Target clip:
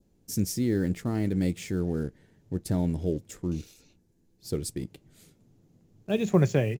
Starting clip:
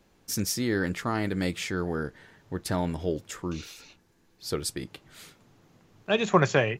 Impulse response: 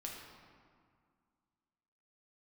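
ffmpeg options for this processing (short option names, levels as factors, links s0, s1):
-filter_complex "[0:a]adynamicequalizer=threshold=0.00447:dfrequency=2200:dqfactor=1.9:tfrequency=2200:tqfactor=1.9:attack=5:release=100:ratio=0.375:range=2.5:mode=boostabove:tftype=bell,asplit=2[s0][s1];[s1]acrusher=bits=5:mix=0:aa=0.5,volume=0.562[s2];[s0][s2]amix=inputs=2:normalize=0,firequalizer=gain_entry='entry(180,0);entry(1100,-19);entry(7200,-7)':delay=0.05:min_phase=1"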